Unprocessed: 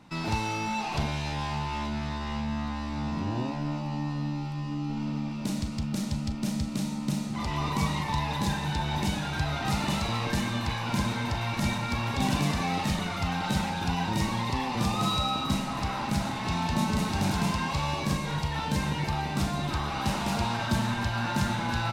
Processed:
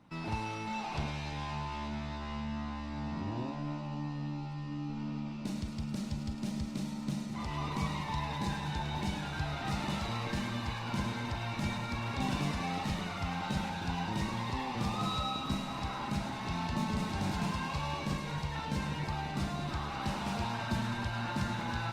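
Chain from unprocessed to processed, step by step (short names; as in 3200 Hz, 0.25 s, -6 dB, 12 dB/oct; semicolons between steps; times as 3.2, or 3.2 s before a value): high shelf 6800 Hz -8.5 dB; on a send: thinning echo 0.106 s, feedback 81%, high-pass 840 Hz, level -10 dB; on the sum: gain -6.5 dB; Opus 32 kbps 48000 Hz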